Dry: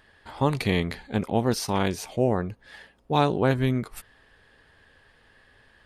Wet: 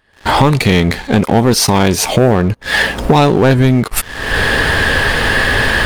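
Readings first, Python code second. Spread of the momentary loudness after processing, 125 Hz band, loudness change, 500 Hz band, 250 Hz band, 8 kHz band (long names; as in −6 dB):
5 LU, +15.0 dB, +13.5 dB, +13.0 dB, +14.0 dB, +20.0 dB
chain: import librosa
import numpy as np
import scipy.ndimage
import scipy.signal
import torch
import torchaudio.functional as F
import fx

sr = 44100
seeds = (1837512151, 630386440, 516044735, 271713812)

y = fx.recorder_agc(x, sr, target_db=-16.0, rise_db_per_s=49.0, max_gain_db=30)
y = fx.leveller(y, sr, passes=3)
y = F.gain(torch.from_numpy(y), 4.0).numpy()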